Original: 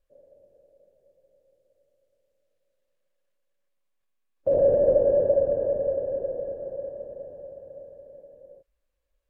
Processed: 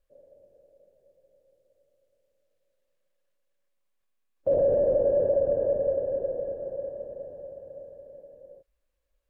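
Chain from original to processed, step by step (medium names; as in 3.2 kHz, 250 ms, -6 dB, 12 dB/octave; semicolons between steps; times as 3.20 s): peak limiter -16 dBFS, peak gain reduction 6 dB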